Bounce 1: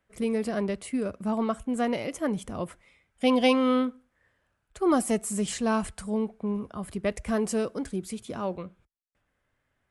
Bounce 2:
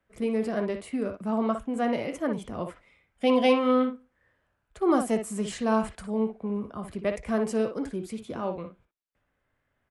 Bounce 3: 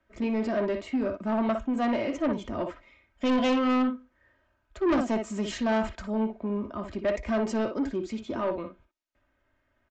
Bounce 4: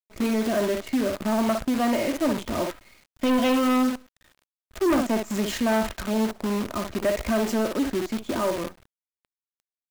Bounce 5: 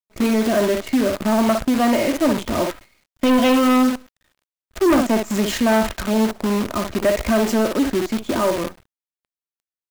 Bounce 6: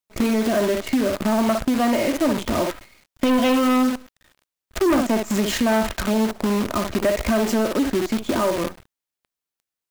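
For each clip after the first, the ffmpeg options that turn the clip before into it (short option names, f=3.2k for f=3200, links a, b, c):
-filter_complex "[0:a]highshelf=f=3.9k:g=-8,acrossover=split=200|5000[a][b][c];[a]asoftclip=type=tanh:threshold=-38.5dB[d];[b]aecho=1:1:18|59:0.251|0.447[e];[d][e][c]amix=inputs=3:normalize=0"
-af "highshelf=f=6.2k:g=-5,aecho=1:1:3.2:0.61,aresample=16000,asoftclip=type=tanh:threshold=-23dB,aresample=44100,volume=2.5dB"
-filter_complex "[0:a]asplit=2[a][b];[b]acompressor=threshold=-32dB:ratio=12,volume=1dB[c];[a][c]amix=inputs=2:normalize=0,acrusher=bits=6:dc=4:mix=0:aa=0.000001"
-af "agate=range=-11dB:threshold=-46dB:ratio=16:detection=peak,volume=6dB"
-af "acompressor=threshold=-31dB:ratio=2,volume=6.5dB"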